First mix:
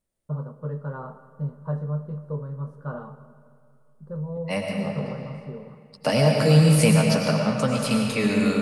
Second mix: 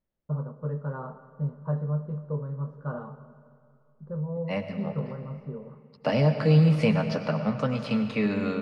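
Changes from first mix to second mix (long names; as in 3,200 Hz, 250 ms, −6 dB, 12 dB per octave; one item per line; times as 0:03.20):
second voice: send −9.0 dB
master: add high-frequency loss of the air 230 metres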